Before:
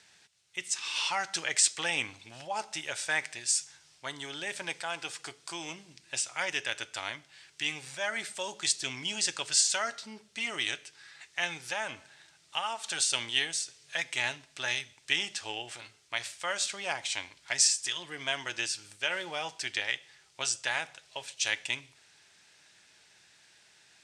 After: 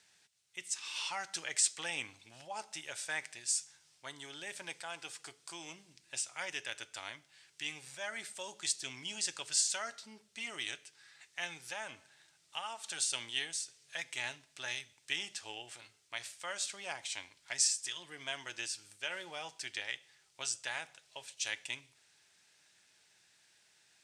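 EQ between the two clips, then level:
high-pass filter 62 Hz
high-shelf EQ 10,000 Hz +10.5 dB
−8.5 dB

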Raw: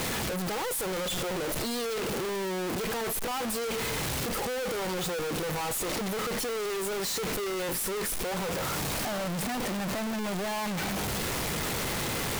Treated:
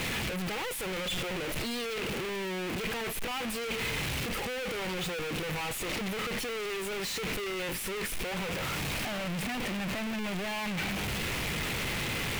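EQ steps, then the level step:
low-shelf EQ 300 Hz +7.5 dB
parametric band 2,500 Hz +11 dB 1.3 octaves
−7.0 dB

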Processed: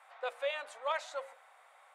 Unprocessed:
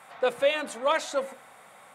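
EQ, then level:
high-pass filter 590 Hz 24 dB per octave
low-pass filter 3,900 Hz 6 dB per octave
−8.0 dB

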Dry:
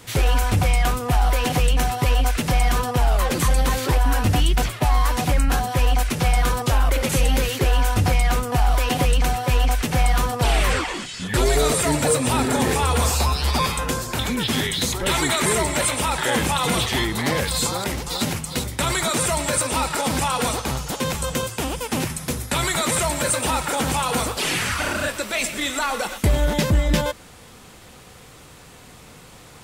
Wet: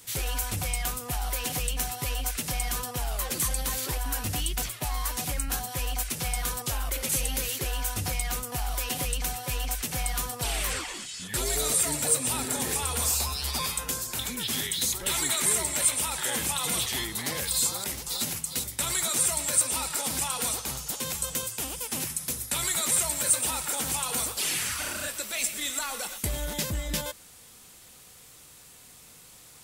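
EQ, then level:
first-order pre-emphasis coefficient 0.8
0.0 dB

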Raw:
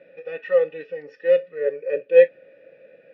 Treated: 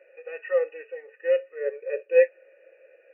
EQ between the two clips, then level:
linear-phase brick-wall band-pass 320–2,900 Hz
low-shelf EQ 480 Hz −7 dB
−2.0 dB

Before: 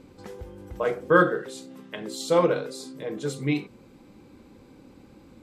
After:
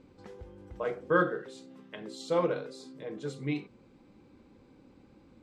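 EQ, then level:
high-frequency loss of the air 67 metres
−7.0 dB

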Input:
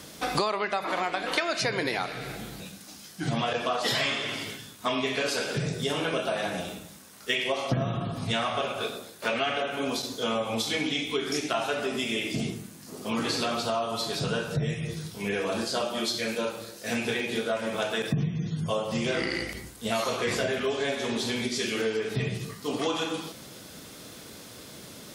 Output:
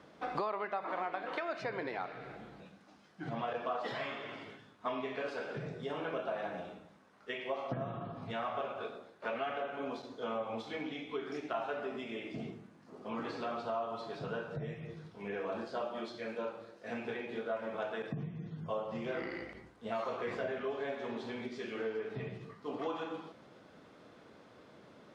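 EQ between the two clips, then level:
low-pass filter 1,100 Hz 12 dB per octave
spectral tilt +3 dB per octave
−5.0 dB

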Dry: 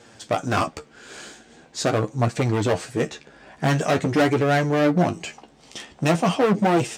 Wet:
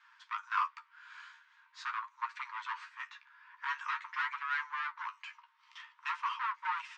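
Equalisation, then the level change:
Chebyshev high-pass filter 920 Hz, order 10
head-to-tape spacing loss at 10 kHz 43 dB
0.0 dB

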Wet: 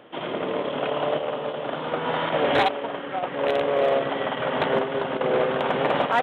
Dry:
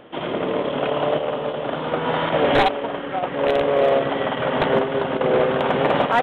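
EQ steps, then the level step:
high-pass filter 74 Hz
low-shelf EQ 390 Hz −4 dB
−2.5 dB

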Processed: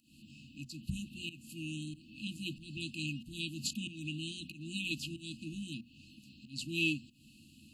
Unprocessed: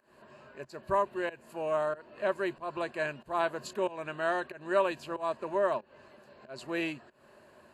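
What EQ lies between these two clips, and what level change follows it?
linear-phase brick-wall band-stop 320–2,500 Hz
mains-hum notches 60/120/180/240 Hz
+7.5 dB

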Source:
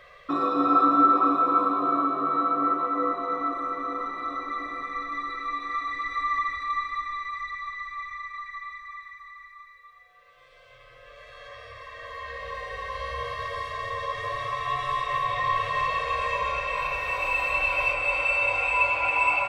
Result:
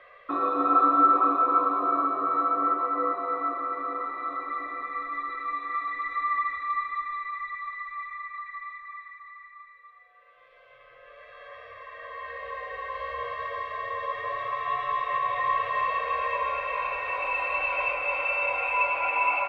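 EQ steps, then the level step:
three-way crossover with the lows and the highs turned down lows −13 dB, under 320 Hz, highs −23 dB, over 3,000 Hz
0.0 dB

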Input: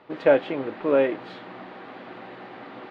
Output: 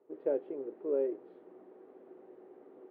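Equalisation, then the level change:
low-pass with resonance 400 Hz, resonance Q 4.9
first difference
+6.5 dB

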